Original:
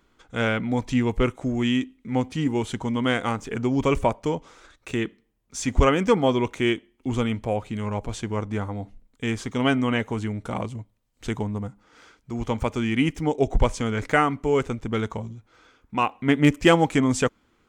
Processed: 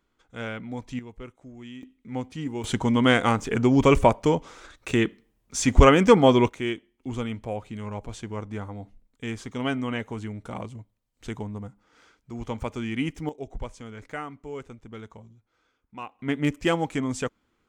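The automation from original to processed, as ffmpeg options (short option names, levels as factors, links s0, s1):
-af "asetnsamples=n=441:p=0,asendcmd='0.99 volume volume -19dB;1.83 volume volume -7.5dB;2.64 volume volume 4dB;6.49 volume volume -6dB;13.29 volume volume -15dB;16.19 volume volume -7dB',volume=0.316"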